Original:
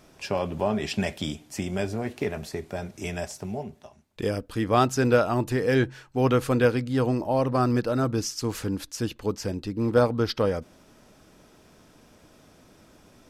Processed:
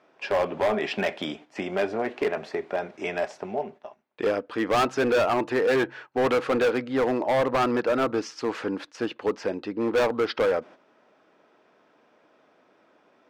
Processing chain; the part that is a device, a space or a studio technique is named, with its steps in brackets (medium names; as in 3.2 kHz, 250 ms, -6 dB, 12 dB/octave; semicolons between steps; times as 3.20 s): walkie-talkie (band-pass 410–2300 Hz; hard clipper -26 dBFS, distortion -6 dB; gate -51 dBFS, range -9 dB); trim +7.5 dB